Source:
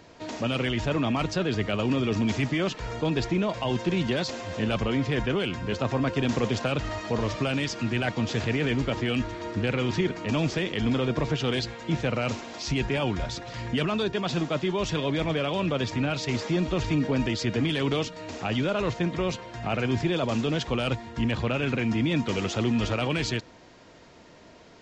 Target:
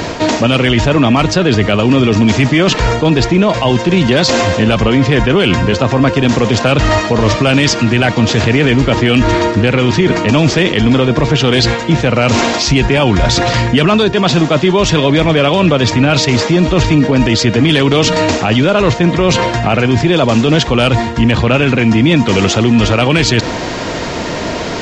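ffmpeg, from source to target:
ffmpeg -i in.wav -af "areverse,acompressor=threshold=-40dB:ratio=6,areverse,alimiter=level_in=33.5dB:limit=-1dB:release=50:level=0:latency=1,volume=-1dB" out.wav

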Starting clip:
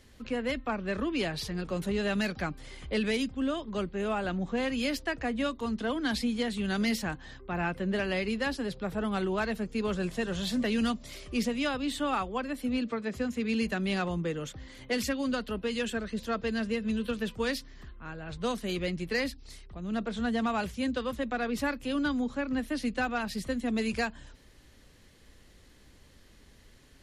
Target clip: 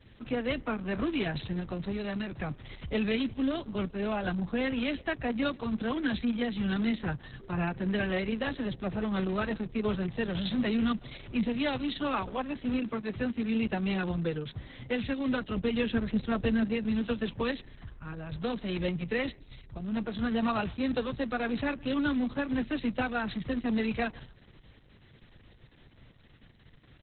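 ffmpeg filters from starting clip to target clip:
ffmpeg -i in.wav -filter_complex "[0:a]equalizer=frequency=120:width_type=o:width=0.67:gain=11,acrossover=split=270|440|1700[link_01][link_02][link_03][link_04];[link_02]acrusher=bits=2:mode=log:mix=0:aa=0.000001[link_05];[link_01][link_05][link_03][link_04]amix=inputs=4:normalize=0,asplit=3[link_06][link_07][link_08];[link_06]afade=type=out:start_time=1.62:duration=0.02[link_09];[link_07]acompressor=threshold=-29dB:ratio=8,afade=type=in:start_time=1.62:duration=0.02,afade=type=out:start_time=2.46:duration=0.02[link_10];[link_08]afade=type=in:start_time=2.46:duration=0.02[link_11];[link_09][link_10][link_11]amix=inputs=3:normalize=0,aresample=16000,aresample=44100,asplit=3[link_12][link_13][link_14];[link_12]afade=type=out:start_time=15.55:duration=0.02[link_15];[link_13]lowshelf=frequency=330:gain=6.5,afade=type=in:start_time=15.55:duration=0.02,afade=type=out:start_time=16.63:duration=0.02[link_16];[link_14]afade=type=in:start_time=16.63:duration=0.02[link_17];[link_15][link_16][link_17]amix=inputs=3:normalize=0,asplit=2[link_18][link_19];[link_19]adelay=145.8,volume=-27dB,highshelf=frequency=4000:gain=-3.28[link_20];[link_18][link_20]amix=inputs=2:normalize=0" -ar 48000 -c:a libopus -b:a 6k out.opus

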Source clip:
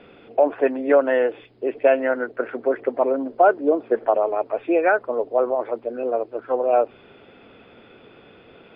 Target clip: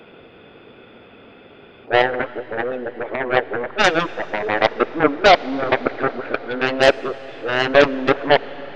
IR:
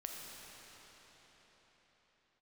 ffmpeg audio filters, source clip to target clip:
-filter_complex "[0:a]areverse,aeval=exprs='0.596*(cos(1*acos(clip(val(0)/0.596,-1,1)))-cos(1*PI/2))+0.0106*(cos(6*acos(clip(val(0)/0.596,-1,1)))-cos(6*PI/2))+0.188*(cos(7*acos(clip(val(0)/0.596,-1,1)))-cos(7*PI/2))':channel_layout=same,asplit=2[link_01][link_02];[1:a]atrim=start_sample=2205,asetrate=30429,aresample=44100[link_03];[link_02][link_03]afir=irnorm=-1:irlink=0,volume=-15dB[link_04];[link_01][link_04]amix=inputs=2:normalize=0,volume=1dB"

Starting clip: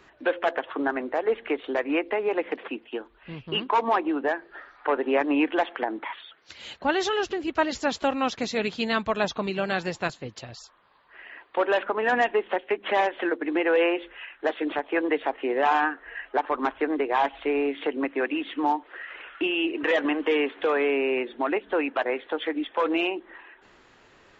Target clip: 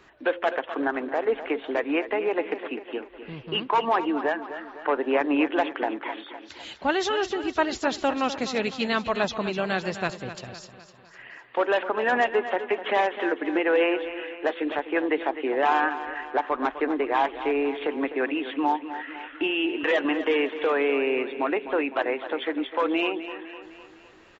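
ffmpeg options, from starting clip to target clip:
ffmpeg -i in.wav -af "aecho=1:1:253|506|759|1012|1265:0.251|0.131|0.0679|0.0353|0.0184" out.wav

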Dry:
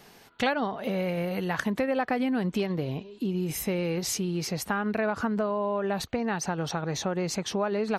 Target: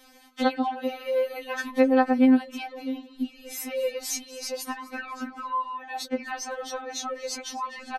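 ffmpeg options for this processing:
ffmpeg -i in.wav -filter_complex "[0:a]asplit=4[link_01][link_02][link_03][link_04];[link_02]adelay=251,afreqshift=-61,volume=-18.5dB[link_05];[link_03]adelay=502,afreqshift=-122,volume=-26.9dB[link_06];[link_04]adelay=753,afreqshift=-183,volume=-35.3dB[link_07];[link_01][link_05][link_06][link_07]amix=inputs=4:normalize=0,afftfilt=real='re*3.46*eq(mod(b,12),0)':imag='im*3.46*eq(mod(b,12),0)':win_size=2048:overlap=0.75,volume=2dB" out.wav

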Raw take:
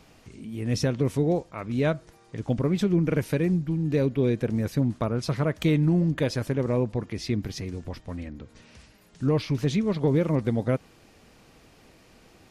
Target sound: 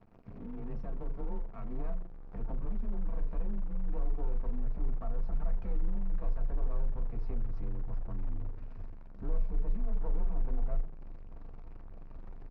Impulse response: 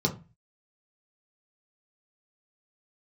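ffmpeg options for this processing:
-filter_complex "[0:a]aeval=exprs='max(val(0),0)':channel_layout=same,aecho=1:1:4.5:0.36,afreqshift=23,asplit=2[link_01][link_02];[1:a]atrim=start_sample=2205,asetrate=36162,aresample=44100[link_03];[link_02][link_03]afir=irnorm=-1:irlink=0,volume=-16dB[link_04];[link_01][link_04]amix=inputs=2:normalize=0,acompressor=threshold=-39dB:ratio=4,volume=33.5dB,asoftclip=hard,volume=-33.5dB,asubboost=boost=7.5:cutoff=57,acrusher=bits=9:dc=4:mix=0:aa=0.000001,lowpass=1100,volume=-1dB"

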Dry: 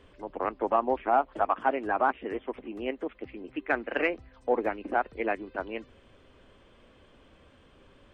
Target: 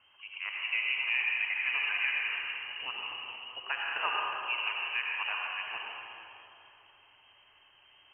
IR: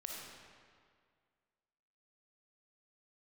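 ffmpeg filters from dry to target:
-filter_complex "[0:a]lowpass=frequency=2700:width_type=q:width=0.5098,lowpass=frequency=2700:width_type=q:width=0.6013,lowpass=frequency=2700:width_type=q:width=0.9,lowpass=frequency=2700:width_type=q:width=2.563,afreqshift=-3200,equalizer=frequency=100:width_type=o:width=0.67:gain=12,equalizer=frequency=400:width_type=o:width=0.67:gain=3,equalizer=frequency=1000:width_type=o:width=0.67:gain=10[link_01];[1:a]atrim=start_sample=2205,asetrate=28224,aresample=44100[link_02];[link_01][link_02]afir=irnorm=-1:irlink=0,volume=-6.5dB"

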